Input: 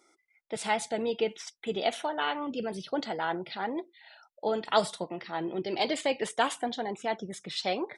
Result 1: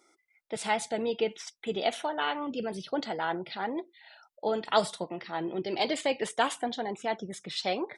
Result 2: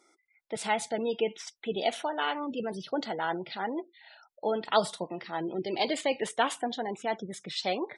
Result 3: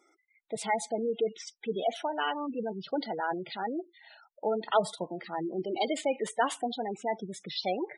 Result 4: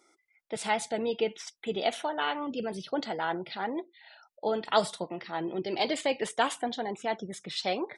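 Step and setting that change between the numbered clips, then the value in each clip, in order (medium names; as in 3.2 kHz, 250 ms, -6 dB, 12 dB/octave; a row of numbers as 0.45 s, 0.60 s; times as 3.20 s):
spectral gate, under each frame's peak: -60 dB, -30 dB, -15 dB, -45 dB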